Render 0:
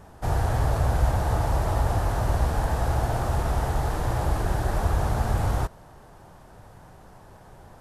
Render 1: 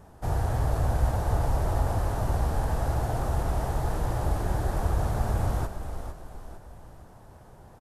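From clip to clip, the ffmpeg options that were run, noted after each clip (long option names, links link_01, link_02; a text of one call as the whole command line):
ffmpeg -i in.wav -filter_complex "[0:a]equalizer=frequency=2600:width=0.4:gain=-4,asplit=2[link_01][link_02];[link_02]asplit=5[link_03][link_04][link_05][link_06][link_07];[link_03]adelay=453,afreqshift=-34,volume=-8.5dB[link_08];[link_04]adelay=906,afreqshift=-68,volume=-15.8dB[link_09];[link_05]adelay=1359,afreqshift=-102,volume=-23.2dB[link_10];[link_06]adelay=1812,afreqshift=-136,volume=-30.5dB[link_11];[link_07]adelay=2265,afreqshift=-170,volume=-37.8dB[link_12];[link_08][link_09][link_10][link_11][link_12]amix=inputs=5:normalize=0[link_13];[link_01][link_13]amix=inputs=2:normalize=0,volume=-2.5dB" out.wav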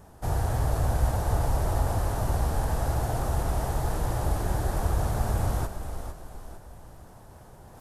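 ffmpeg -i in.wav -af "highshelf=frequency=4800:gain=6,areverse,acompressor=mode=upward:threshold=-44dB:ratio=2.5,areverse" out.wav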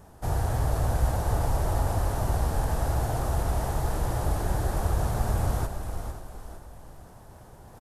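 ffmpeg -i in.wav -af "aecho=1:1:530:0.2" out.wav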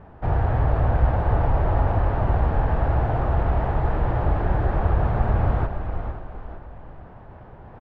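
ffmpeg -i in.wav -af "lowpass=frequency=2600:width=0.5412,lowpass=frequency=2600:width=1.3066,volume=5.5dB" out.wav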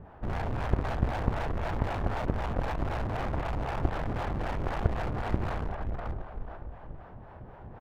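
ffmpeg -i in.wav -filter_complex "[0:a]acrossover=split=490[link_01][link_02];[link_01]aeval=exprs='val(0)*(1-0.7/2+0.7/2*cos(2*PI*3.9*n/s))':channel_layout=same[link_03];[link_02]aeval=exprs='val(0)*(1-0.7/2-0.7/2*cos(2*PI*3.9*n/s))':channel_layout=same[link_04];[link_03][link_04]amix=inputs=2:normalize=0,aeval=exprs='clip(val(0),-1,0.0316)':channel_layout=same,aeval=exprs='0.335*(cos(1*acos(clip(val(0)/0.335,-1,1)))-cos(1*PI/2))+0.075*(cos(6*acos(clip(val(0)/0.335,-1,1)))-cos(6*PI/2))':channel_layout=same" out.wav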